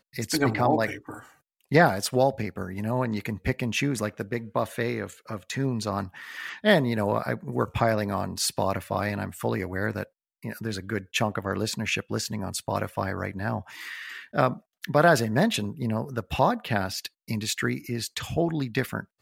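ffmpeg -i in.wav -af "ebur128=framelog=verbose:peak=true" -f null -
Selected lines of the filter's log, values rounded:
Integrated loudness:
  I:         -27.1 LUFS
  Threshold: -37.4 LUFS
Loudness range:
  LRA:         4.5 LU
  Threshold: -47.5 LUFS
  LRA low:   -29.9 LUFS
  LRA high:  -25.5 LUFS
True peak:
  Peak:       -5.0 dBFS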